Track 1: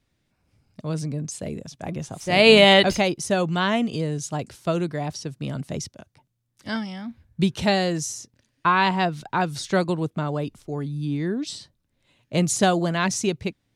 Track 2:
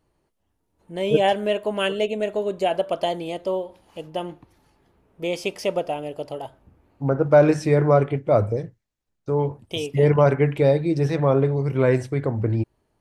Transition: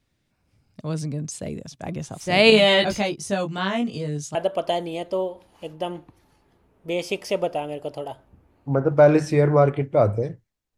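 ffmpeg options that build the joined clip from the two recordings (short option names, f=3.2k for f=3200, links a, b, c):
-filter_complex "[0:a]asettb=1/sr,asplit=3[a][b][c];[a]atrim=end=2.504[d];[b]atrim=start=2.5:end=4.35,asetpts=PTS-STARTPTS,afade=t=in:d=0.004:c=qsin,afade=t=out:st=1.846:d=0.004:c=qsin,flanger=delay=18.5:depth=2.3:speed=0.38[e];[c]atrim=start=4.346[f];[d][e]acrossfade=d=0.004:c1=hsin:c2=qsin[g];[g][f]acrossfade=d=0.004:c1=qsin:c2=hsin,apad=whole_dur=10.77,atrim=end=10.77,atrim=end=4.352[h];[1:a]atrim=start=2.688:end=9.11[i];[h][i]acrossfade=d=0.004:c1=hsin:c2=hsin"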